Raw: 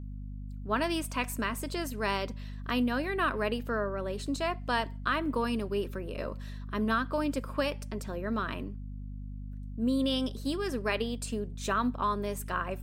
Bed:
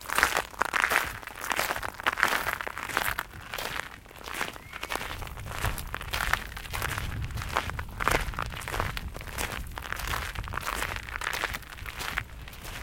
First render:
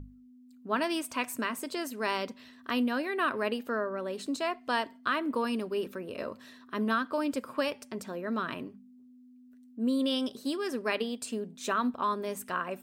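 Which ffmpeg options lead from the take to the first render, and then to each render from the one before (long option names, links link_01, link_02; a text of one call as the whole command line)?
ffmpeg -i in.wav -af "bandreject=frequency=50:width_type=h:width=6,bandreject=frequency=100:width_type=h:width=6,bandreject=frequency=150:width_type=h:width=6,bandreject=frequency=200:width_type=h:width=6" out.wav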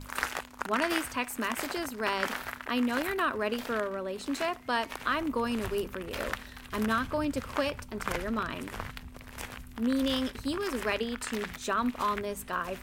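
ffmpeg -i in.wav -i bed.wav -filter_complex "[1:a]volume=-8.5dB[link_01];[0:a][link_01]amix=inputs=2:normalize=0" out.wav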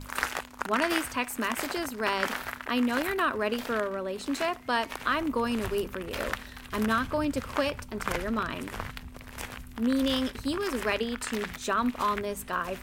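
ffmpeg -i in.wav -af "volume=2dB" out.wav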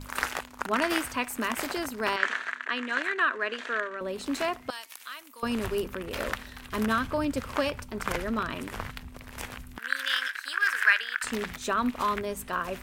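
ffmpeg -i in.wav -filter_complex "[0:a]asettb=1/sr,asplit=3[link_01][link_02][link_03];[link_01]atrim=end=2.164[link_04];[link_02]atrim=start=2.16:end=4.01,asetpts=PTS-STARTPTS,afade=type=in:duration=0.004:curve=qsin,afade=type=out:start_time=1.846:duration=0.004:curve=qsin,highpass=450,equalizer=frequency=550:width_type=q:width=4:gain=-6,equalizer=frequency=820:width_type=q:width=4:gain=-9,equalizer=frequency=1700:width_type=q:width=4:gain=8,equalizer=frequency=5100:width_type=q:width=4:gain=-9,lowpass=frequency=7100:width=0.5412,lowpass=frequency=7100:width=1.3066[link_05];[link_03]atrim=start=4.006[link_06];[link_04][link_05]acrossfade=duration=0.004:curve1=hsin:curve2=qsin[link_07];[link_07][link_06]acrossfade=duration=0.004:curve1=qsin:curve2=hsin,asettb=1/sr,asplit=3[link_08][link_09][link_10];[link_08]atrim=end=4.704[link_11];[link_09]atrim=start=4.7:end=5.43,asetpts=PTS-STARTPTS,afade=type=in:duration=0.004:curve=qsin,afade=type=out:start_time=0.726:duration=0.004:curve=qsin,aderivative[link_12];[link_10]atrim=start=5.426[link_13];[link_11][link_12]acrossfade=duration=0.004:curve1=hsin:curve2=qsin[link_14];[link_14][link_13]acrossfade=duration=0.004:curve1=qsin:curve2=hsin,asettb=1/sr,asplit=3[link_15][link_16][link_17];[link_15]atrim=end=9.784[link_18];[link_16]atrim=start=9.78:end=11.24,asetpts=PTS-STARTPTS,afade=type=in:duration=0.004:curve=qsin,afade=type=out:start_time=1.456:duration=0.004:curve=qsin,highpass=frequency=1600:width_type=q:width=7[link_19];[link_17]atrim=start=11.236[link_20];[link_18][link_19]acrossfade=duration=0.004:curve1=hsin:curve2=qsin[link_21];[link_21][link_20]acrossfade=duration=0.004:curve1=qsin:curve2=hsin" out.wav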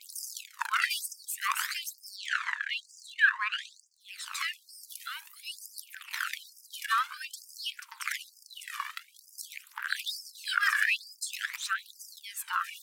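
ffmpeg -i in.wav -af "aphaser=in_gain=1:out_gain=1:delay=1.8:decay=0.63:speed=0.51:type=triangular,afftfilt=real='re*gte(b*sr/1024,850*pow(4800/850,0.5+0.5*sin(2*PI*1.1*pts/sr)))':imag='im*gte(b*sr/1024,850*pow(4800/850,0.5+0.5*sin(2*PI*1.1*pts/sr)))':win_size=1024:overlap=0.75" out.wav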